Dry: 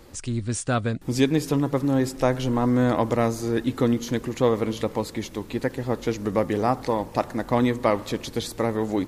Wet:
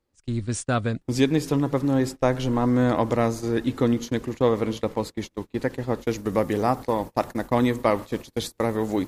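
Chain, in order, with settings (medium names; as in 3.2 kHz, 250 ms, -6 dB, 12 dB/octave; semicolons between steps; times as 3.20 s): gate -30 dBFS, range -29 dB; treble shelf 11 kHz -5 dB, from 6.01 s +9 dB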